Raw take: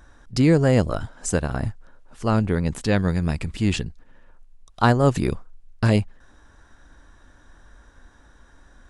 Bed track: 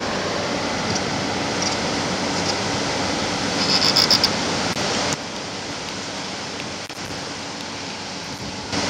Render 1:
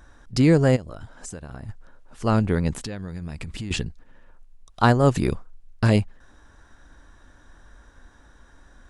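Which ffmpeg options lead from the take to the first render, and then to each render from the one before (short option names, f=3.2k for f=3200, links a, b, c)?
-filter_complex "[0:a]asplit=3[a][b][c];[a]afade=t=out:st=0.75:d=0.02[d];[b]acompressor=threshold=-35dB:ratio=4:attack=3.2:release=140:knee=1:detection=peak,afade=t=in:st=0.75:d=0.02,afade=t=out:st=1.68:d=0.02[e];[c]afade=t=in:st=1.68:d=0.02[f];[d][e][f]amix=inputs=3:normalize=0,asettb=1/sr,asplit=3[g][h][i];[g]atrim=end=2.754[j];[h]atrim=start=2.75:end=3.71,asetpts=PTS-STARTPTS,afade=t=in:d=0.004:c=qsin,afade=t=out:st=0.956:d=0.004:c=qsin,acompressor=threshold=-28dB:ratio=12:attack=3.2:release=140:knee=1:detection=peak[k];[i]atrim=start=3.706[l];[j][k]acrossfade=d=0.004:c1=hsin:c2=qsin[m];[m][l]acrossfade=d=0.004:c1=qsin:c2=hsin"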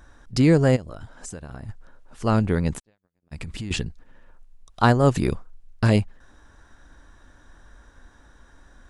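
-filter_complex "[0:a]asplit=3[a][b][c];[a]afade=t=out:st=2.78:d=0.02[d];[b]agate=range=-53dB:threshold=-28dB:ratio=16:release=100:detection=peak,afade=t=in:st=2.78:d=0.02,afade=t=out:st=3.31:d=0.02[e];[c]afade=t=in:st=3.31:d=0.02[f];[d][e][f]amix=inputs=3:normalize=0"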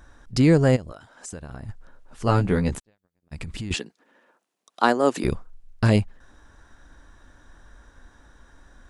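-filter_complex "[0:a]asettb=1/sr,asplit=3[a][b][c];[a]atrim=end=0.924[d];[b]atrim=start=0.92:end=1.33,asetpts=PTS-STARTPTS,afade=t=in:d=0.004:c=qsin,afade=t=out:st=0.406:d=0.004:c=qsin,highpass=f=490:p=1[e];[c]atrim=start=1.326[f];[d][e]acrossfade=d=0.004:c1=hsin:c2=qsin[g];[g][f]acrossfade=d=0.004:c1=qsin:c2=hsin,asettb=1/sr,asplit=3[h][i][j];[h]atrim=end=2.264[k];[i]atrim=start=2.26:end=2.75,asetpts=PTS-STARTPTS,afade=t=in:d=0.004:c=qsin,afade=t=out:st=0.486:d=0.004:c=qsin,asplit=2[l][m];[m]adelay=16,volume=-4.5dB[n];[l][n]amix=inputs=2:normalize=0,atrim=end_sample=21609[o];[j]atrim=start=2.746[p];[k][o]acrossfade=d=0.004:c1=hsin:c2=qsin[q];[q][p]acrossfade=d=0.004:c1=qsin:c2=hsin,asettb=1/sr,asplit=3[r][s][t];[r]atrim=end=3.754[u];[s]atrim=start=3.75:end=5.24,asetpts=PTS-STARTPTS,afade=t=in:d=0.004:c=qsin,afade=t=out:st=1.486:d=0.004:c=qsin,highpass=f=250:w=0.5412,highpass=f=250:w=1.3066[v];[t]atrim=start=5.236[w];[u][v]acrossfade=d=0.004:c1=hsin:c2=qsin[x];[x][w]acrossfade=d=0.004:c1=qsin:c2=hsin"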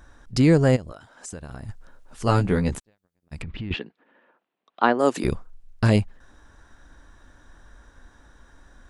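-filter_complex "[0:a]asettb=1/sr,asplit=3[a][b][c];[a]atrim=end=1.434[d];[b]atrim=start=1.43:end=2.43,asetpts=PTS-STARTPTS,afade=t=in:d=0.004:c=qsin,afade=t=out:st=0.996:d=0.004:c=qsin,highshelf=f=4.1k:g=5.5[e];[c]atrim=start=2.426[f];[d][e]acrossfade=d=0.004:c1=hsin:c2=qsin[g];[g][f]acrossfade=d=0.004:c1=qsin:c2=hsin,asettb=1/sr,asplit=3[h][i][j];[h]atrim=end=3.424[k];[i]atrim=start=3.42:end=4.99,asetpts=PTS-STARTPTS,afade=t=in:d=0.004:c=qsin,afade=t=out:st=1.566:d=0.004:c=qsin,lowpass=f=3.3k:w=0.5412,lowpass=f=3.3k:w=1.3066[l];[j]atrim=start=4.986[m];[k][l]acrossfade=d=0.004:c1=hsin:c2=qsin[n];[n][m]acrossfade=d=0.004:c1=qsin:c2=hsin"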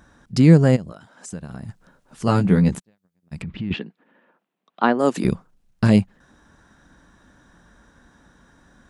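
-af "highpass=f=100:p=1,equalizer=f=180:w=1.7:g=11"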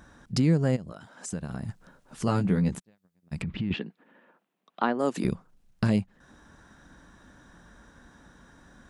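-af "acompressor=threshold=-28dB:ratio=2"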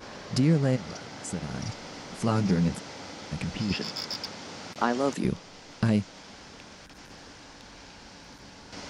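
-filter_complex "[1:a]volume=-19dB[a];[0:a][a]amix=inputs=2:normalize=0"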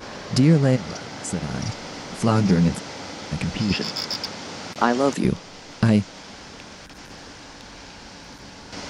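-af "volume=6.5dB"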